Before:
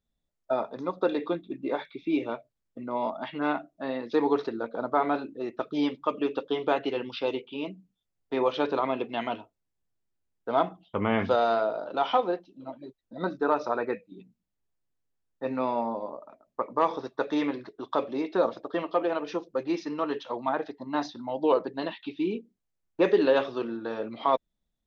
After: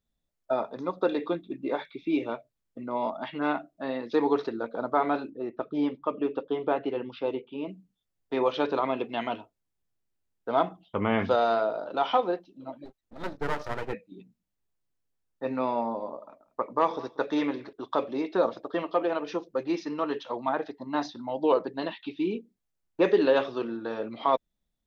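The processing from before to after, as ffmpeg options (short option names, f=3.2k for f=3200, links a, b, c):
-filter_complex "[0:a]asettb=1/sr,asplit=3[a][b][c];[a]atrim=end=5.304[d];[b]atrim=start=5.3:end=7.69,asetpts=PTS-STARTPTS,afade=t=in:d=0.004:c=qsin,afade=t=out:st=2.386:d=0.004:c=qsin,lowpass=f=1.2k:p=1[e];[c]atrim=start=7.686[f];[d][e]acrossfade=d=0.004:c1=hsin:c2=qsin[g];[g][f]acrossfade=d=0.004:c1=qsin:c2=hsin,asplit=3[h][i][j];[h]afade=t=out:st=12.84:d=0.02[k];[i]aeval=exprs='max(val(0),0)':c=same,afade=t=in:st=12.84:d=0.02,afade=t=out:st=13.92:d=0.02[l];[j]afade=t=in:st=13.92:d=0.02[m];[k][l][m]amix=inputs=3:normalize=0,asettb=1/sr,asplit=3[n][o][p];[n]atrim=end=15.804[q];[o]atrim=start=15.8:end=17.73,asetpts=PTS-STARTPTS,afade=t=in:d=0.004:c=qsin,afade=t=out:st=1.926:d=0.004:c=qsin,aecho=1:1:186:0.0944,atrim=end_sample=85113[r];[p]atrim=start=17.726[s];[q][r]acrossfade=d=0.004:c1=hsin:c2=qsin[t];[t][s]acrossfade=d=0.004:c1=qsin:c2=hsin"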